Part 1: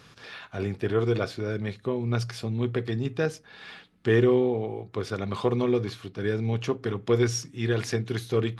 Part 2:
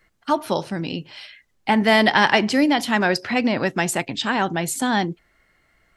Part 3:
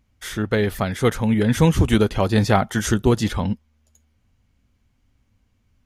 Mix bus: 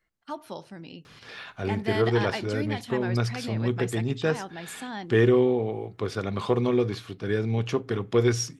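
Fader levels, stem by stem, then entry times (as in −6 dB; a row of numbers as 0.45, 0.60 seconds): +1.0 dB, −15.5 dB, muted; 1.05 s, 0.00 s, muted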